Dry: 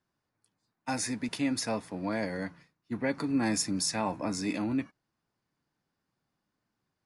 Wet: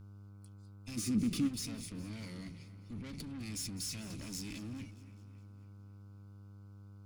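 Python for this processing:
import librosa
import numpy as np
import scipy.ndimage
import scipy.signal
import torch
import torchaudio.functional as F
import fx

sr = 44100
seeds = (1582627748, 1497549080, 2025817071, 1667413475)

p1 = scipy.signal.sosfilt(scipy.signal.ellip(3, 1.0, 40, [680.0, 2200.0], 'bandstop', fs=sr, output='sos'), x)
p2 = fx.over_compress(p1, sr, threshold_db=-41.0, ratio=-1.0)
p3 = p1 + (p2 * librosa.db_to_amplitude(2.5))
p4 = fx.tube_stage(p3, sr, drive_db=34.0, bias=0.6)
p5 = fx.small_body(p4, sr, hz=(210.0, 310.0, 1200.0), ring_ms=30, db=fx.line((0.96, 14.0), (1.47, 17.0)), at=(0.96, 1.47), fade=0.02)
p6 = fx.dmg_buzz(p5, sr, base_hz=100.0, harmonics=15, level_db=-49.0, tilt_db=-6, odd_only=False)
p7 = fx.tone_stack(p6, sr, knobs='6-0-2')
p8 = p7 + fx.echo_split(p7, sr, split_hz=2600.0, low_ms=276, high_ms=207, feedback_pct=52, wet_db=-16, dry=0)
p9 = fx.band_squash(p8, sr, depth_pct=40, at=(4.1, 4.51))
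y = p9 * librosa.db_to_amplitude(11.5)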